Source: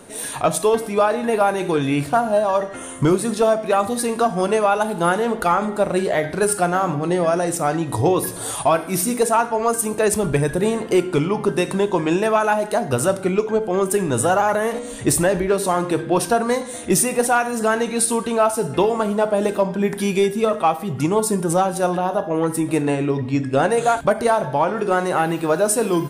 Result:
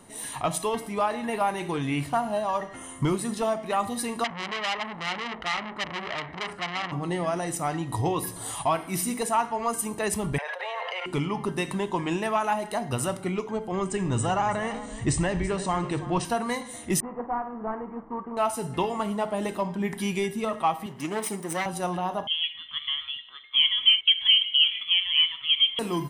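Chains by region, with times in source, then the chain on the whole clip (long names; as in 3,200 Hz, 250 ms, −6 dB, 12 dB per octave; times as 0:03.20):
0:04.24–0:06.92: low-pass filter 2,600 Hz + saturating transformer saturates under 3,000 Hz
0:10.38–0:11.06: Chebyshev high-pass filter 510 Hz, order 6 + high-frequency loss of the air 290 metres + envelope flattener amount 100%
0:13.72–0:16.25: Chebyshev low-pass filter 8,800 Hz, order 8 + low-shelf EQ 130 Hz +11 dB + single-tap delay 332 ms −15 dB
0:17.00–0:18.37: variable-slope delta modulation 16 kbit/s + Chebyshev low-pass filter 1,200 Hz, order 3 + parametric band 100 Hz −11.5 dB 1.7 octaves
0:20.86–0:21.66: lower of the sound and its delayed copy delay 0.34 ms + high-pass filter 280 Hz + notch filter 780 Hz, Q 24
0:22.27–0:25.79: high-pass filter 600 Hz 24 dB per octave + spectral tilt −4.5 dB per octave + voice inversion scrambler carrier 3,800 Hz
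whole clip: comb filter 1 ms, depth 45%; dynamic equaliser 2,600 Hz, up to +5 dB, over −37 dBFS, Q 1.4; level −8.5 dB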